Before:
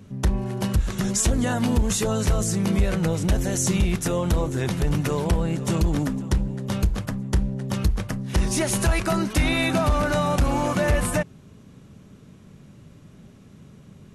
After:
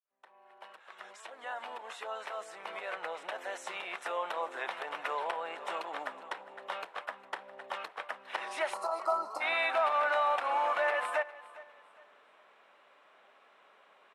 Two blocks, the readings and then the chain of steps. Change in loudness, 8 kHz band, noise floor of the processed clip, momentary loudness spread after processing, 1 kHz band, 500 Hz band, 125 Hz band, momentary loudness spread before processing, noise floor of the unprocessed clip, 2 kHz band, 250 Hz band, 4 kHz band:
-11.0 dB, -26.5 dB, -63 dBFS, 16 LU, -2.0 dB, -9.0 dB, under -40 dB, 4 LU, -49 dBFS, -4.5 dB, -33.0 dB, -11.0 dB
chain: fade-in on the opening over 4.38 s; time-frequency box 8.74–9.41 s, 1.4–4 kHz -27 dB; high-pass 700 Hz 24 dB/octave; peaking EQ 8.4 kHz +8 dB 0.59 oct; band-stop 4.6 kHz, Q 17; in parallel at -2.5 dB: compression, threshold -41 dBFS, peak gain reduction 20.5 dB; on the sum: saturation -5 dBFS, distortion -37 dB; distance through air 440 m; on a send: feedback delay 407 ms, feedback 32%, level -19 dB

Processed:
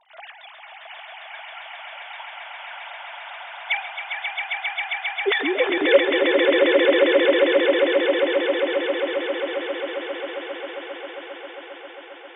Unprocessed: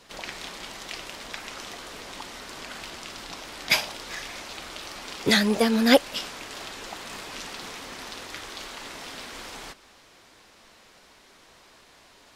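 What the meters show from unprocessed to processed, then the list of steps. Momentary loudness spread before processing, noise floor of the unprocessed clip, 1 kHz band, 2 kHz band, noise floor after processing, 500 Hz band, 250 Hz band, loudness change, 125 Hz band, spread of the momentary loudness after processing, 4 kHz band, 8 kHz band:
17 LU, -55 dBFS, +4.5 dB, +8.0 dB, -43 dBFS, +12.0 dB, +2.0 dB, +8.0 dB, under -15 dB, 20 LU, +2.0 dB, under -40 dB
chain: formants replaced by sine waves; echo with a slow build-up 134 ms, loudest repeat 8, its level -4 dB; trim -1 dB

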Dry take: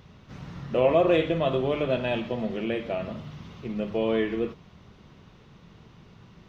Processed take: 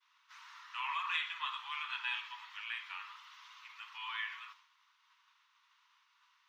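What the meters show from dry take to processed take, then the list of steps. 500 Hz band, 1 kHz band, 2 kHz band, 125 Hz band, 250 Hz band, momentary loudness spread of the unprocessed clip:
under -40 dB, -8.0 dB, -2.5 dB, under -40 dB, under -40 dB, 18 LU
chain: steep high-pass 930 Hz 96 dB/octave; expander -55 dBFS; trim -2.5 dB

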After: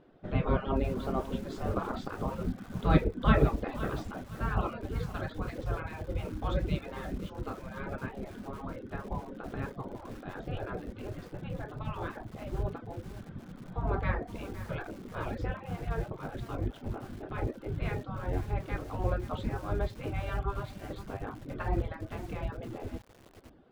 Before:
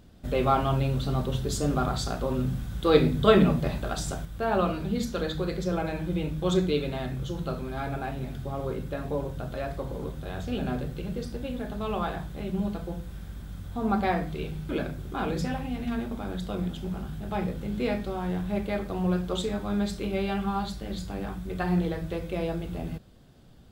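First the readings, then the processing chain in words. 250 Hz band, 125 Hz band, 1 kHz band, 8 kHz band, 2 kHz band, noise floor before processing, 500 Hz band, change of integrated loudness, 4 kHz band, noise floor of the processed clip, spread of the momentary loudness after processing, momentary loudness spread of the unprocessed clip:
-8.0 dB, -4.0 dB, -6.0 dB, -15.0 dB, -3.5 dB, -41 dBFS, -8.0 dB, -6.0 dB, -11.5 dB, -51 dBFS, 11 LU, 10 LU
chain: spectral gate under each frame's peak -10 dB weak; low-pass 1.9 kHz 12 dB/octave; reverb removal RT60 0.55 s; bass shelf 270 Hz +11 dB; bit-crushed delay 515 ms, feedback 35%, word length 7-bit, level -13 dB

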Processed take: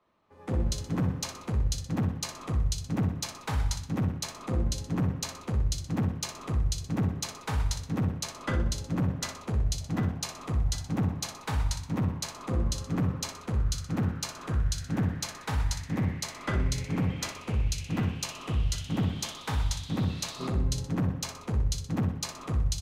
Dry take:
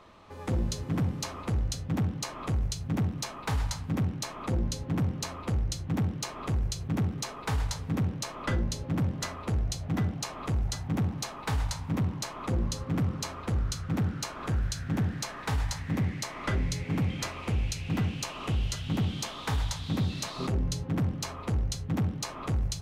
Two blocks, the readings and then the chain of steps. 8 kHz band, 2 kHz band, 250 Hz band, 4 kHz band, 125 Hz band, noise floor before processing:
+2.0 dB, -1.0 dB, +0.5 dB, +1.0 dB, 0.0 dB, -42 dBFS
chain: feedback delay 62 ms, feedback 56%, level -9 dB; three bands expanded up and down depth 70%

